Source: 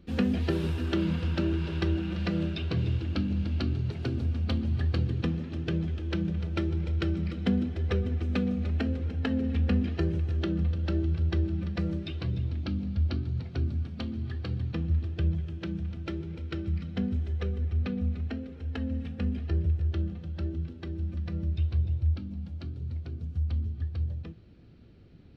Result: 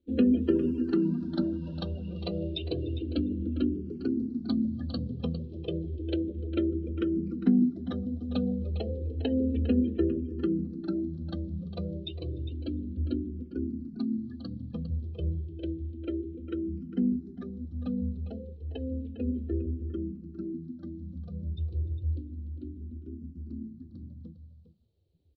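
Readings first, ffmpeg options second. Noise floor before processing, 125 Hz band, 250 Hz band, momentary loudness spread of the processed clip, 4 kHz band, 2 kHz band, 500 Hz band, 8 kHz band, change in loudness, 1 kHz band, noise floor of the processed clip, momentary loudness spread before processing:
−44 dBFS, −6.5 dB, +2.5 dB, 14 LU, −3.0 dB, below −10 dB, +2.5 dB, can't be measured, −1.5 dB, −7.0 dB, −48 dBFS, 7 LU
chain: -filter_complex "[0:a]bandreject=frequency=50:width_type=h:width=6,bandreject=frequency=100:width_type=h:width=6,bandreject=frequency=150:width_type=h:width=6,bandreject=frequency=200:width_type=h:width=6,afftdn=noise_reduction=22:noise_floor=-37,equalizer=frequency=125:width_type=o:width=1:gain=-11,equalizer=frequency=250:width_type=o:width=1:gain=10,equalizer=frequency=500:width_type=o:width=1:gain=4,equalizer=frequency=2000:width_type=o:width=1:gain=-11,equalizer=frequency=4000:width_type=o:width=1:gain=10,aecho=1:1:404:0.237,asplit=2[link_01][link_02];[link_02]afreqshift=-0.31[link_03];[link_01][link_03]amix=inputs=2:normalize=1"

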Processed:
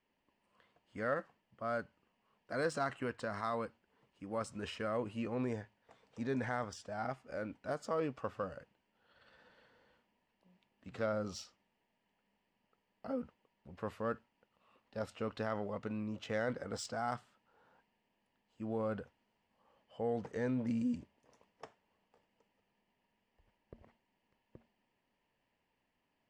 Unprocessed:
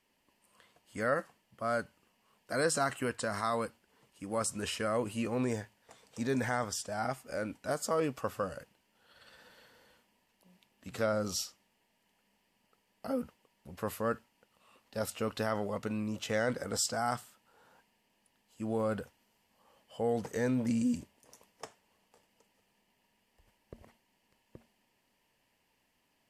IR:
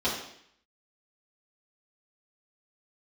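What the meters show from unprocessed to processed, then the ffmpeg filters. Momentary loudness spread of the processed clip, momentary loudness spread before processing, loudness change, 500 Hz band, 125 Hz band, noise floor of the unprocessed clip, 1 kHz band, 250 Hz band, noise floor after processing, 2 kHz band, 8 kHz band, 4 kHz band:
17 LU, 16 LU, −5.0 dB, −4.5 dB, −4.5 dB, −76 dBFS, −5.0 dB, −4.5 dB, −82 dBFS, −5.5 dB, −15.5 dB, −9.5 dB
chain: -af "adynamicsmooth=sensitivity=2:basefreq=3600,volume=-4.5dB"

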